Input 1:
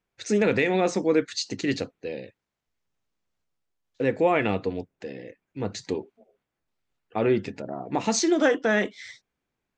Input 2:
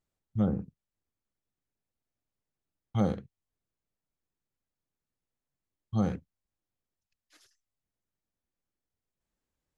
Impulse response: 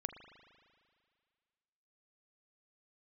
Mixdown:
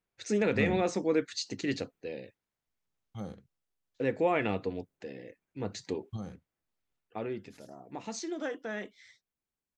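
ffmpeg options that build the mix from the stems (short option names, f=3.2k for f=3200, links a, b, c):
-filter_complex "[0:a]volume=-6dB,afade=t=out:st=6.98:d=0.3:silence=0.354813,asplit=2[a][b];[1:a]highshelf=f=4.1k:g=8.5,adelay=200,volume=-4.5dB[c];[b]apad=whole_len=440104[d];[c][d]sidechaingate=range=-9dB:threshold=-55dB:ratio=16:detection=peak[e];[a][e]amix=inputs=2:normalize=0"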